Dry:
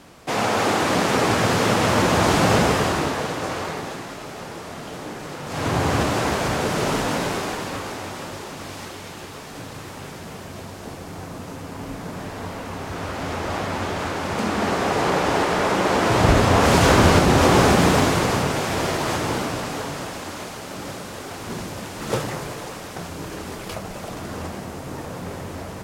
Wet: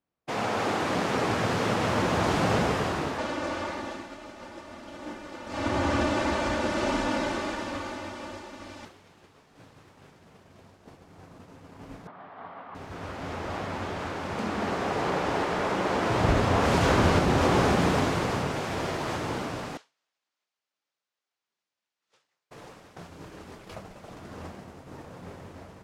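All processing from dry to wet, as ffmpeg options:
ffmpeg -i in.wav -filter_complex "[0:a]asettb=1/sr,asplit=3[link_01][link_02][link_03];[link_01]atrim=end=3.184[link_04];[link_02]atrim=start=3.18:end=8.85,asetpts=PTS-STARTPTS,afade=type=in:duration=0.004:curve=qsin,afade=type=out:start_time=5.666:duration=0.004:curve=qsin,aecho=1:1:3.4:1,atrim=end_sample=250047,acrossover=split=9700[link_05][link_06];[link_06]acompressor=threshold=-57dB:ratio=4:attack=1:release=60[link_07];[link_05][link_07]amix=inputs=2:normalize=0[link_08];[link_03]atrim=start=8.846[link_09];[link_04][link_08]acrossfade=duration=0.004:curve1=hsin:curve2=qsin[link_10];[link_10][link_09]acrossfade=duration=0.004:curve1=qsin:curve2=hsin,asettb=1/sr,asplit=3[link_11][link_12][link_13];[link_11]atrim=end=12.074[link_14];[link_12]atrim=start=12.07:end=12.75,asetpts=PTS-STARTPTS,afade=type=in:duration=0.004:curve=qsin,afade=type=out:start_time=0.676:duration=0.004:curve=qsin,volume=25.5dB,asoftclip=hard,volume=-25.5dB,highpass=230,equalizer=frequency=230:width_type=q:width=4:gain=-4,equalizer=frequency=330:width_type=q:width=4:gain=-7,equalizer=frequency=480:width_type=q:width=4:gain=-6,equalizer=frequency=740:width_type=q:width=4:gain=7,equalizer=frequency=1200:width_type=q:width=4:gain=8,equalizer=frequency=2600:width_type=q:width=4:gain=-5,lowpass=frequency=3100:width=0.5412,lowpass=frequency=3100:width=1.3066[link_15];[link_13]atrim=start=12.746[link_16];[link_14][link_15]acrossfade=duration=0.004:curve1=hsin:curve2=qsin[link_17];[link_17][link_16]acrossfade=duration=0.004:curve1=qsin:curve2=hsin,asettb=1/sr,asplit=3[link_18][link_19][link_20];[link_18]atrim=end=19.774[link_21];[link_19]atrim=start=19.77:end=22.51,asetpts=PTS-STARTPTS,afade=type=in:duration=0.004:curve=qsin,afade=type=out:start_time=2.736:duration=0.004:curve=qsin,lowpass=5100,aderivative[link_22];[link_20]atrim=start=22.506[link_23];[link_21][link_22]acrossfade=duration=0.004:curve1=hsin:curve2=qsin[link_24];[link_24][link_23]acrossfade=duration=0.004:curve1=qsin:curve2=hsin,agate=range=-33dB:threshold=-27dB:ratio=3:detection=peak,highshelf=frequency=7000:gain=-10.5,volume=-7dB" out.wav

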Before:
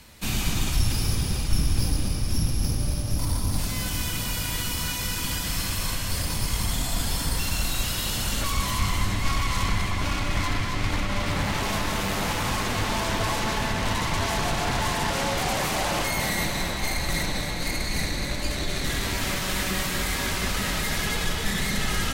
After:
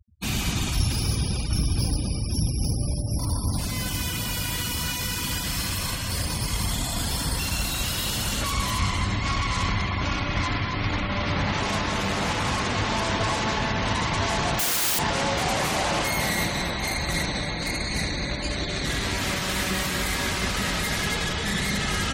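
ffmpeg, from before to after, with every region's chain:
ffmpeg -i in.wav -filter_complex "[0:a]asettb=1/sr,asplit=3[link_01][link_02][link_03];[link_01]atrim=end=14.594[link_04];[link_02]atrim=start=14.59:end=14.99,asetpts=PTS-STARTPTS,afade=type=in:duration=0.004:curve=qsin,afade=type=out:start_time=0.396:duration=0.004:curve=qsin,aemphasis=mode=production:type=riaa,aeval=exprs='(mod(9.44*val(0)+1,2)-1)/9.44':channel_layout=same[link_05];[link_03]atrim=start=14.986[link_06];[link_04][link_05]acrossfade=duration=0.004:curve1=hsin:curve2=qsin[link_07];[link_07][link_06]acrossfade=duration=0.004:curve1=qsin:curve2=hsin,highpass=47,afftfilt=real='re*gte(hypot(re,im),0.0178)':imag='im*gte(hypot(re,im),0.0178)':win_size=1024:overlap=0.75,volume=1.5dB" out.wav

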